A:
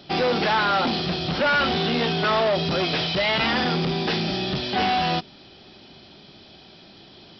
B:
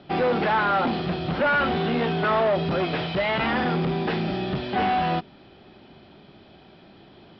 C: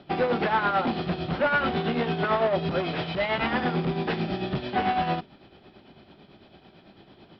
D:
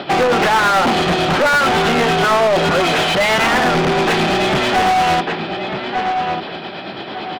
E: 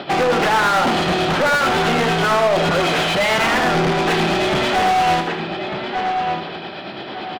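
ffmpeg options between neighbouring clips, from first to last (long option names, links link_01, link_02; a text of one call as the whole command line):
ffmpeg -i in.wav -af "lowpass=2100" out.wav
ffmpeg -i in.wav -af "tremolo=f=9:d=0.55" out.wav
ffmpeg -i in.wav -filter_complex "[0:a]asplit=2[link_01][link_02];[link_02]adelay=1196,lowpass=frequency=4200:poles=1,volume=-16dB,asplit=2[link_03][link_04];[link_04]adelay=1196,lowpass=frequency=4200:poles=1,volume=0.22[link_05];[link_01][link_03][link_05]amix=inputs=3:normalize=0,asplit=2[link_06][link_07];[link_07]highpass=frequency=720:poles=1,volume=29dB,asoftclip=type=tanh:threshold=-15dB[link_08];[link_06][link_08]amix=inputs=2:normalize=0,lowpass=frequency=3700:poles=1,volume=-6dB,volume=6.5dB" out.wav
ffmpeg -i in.wav -af "aecho=1:1:78|156|234|312:0.355|0.128|0.046|0.0166,volume=-3dB" out.wav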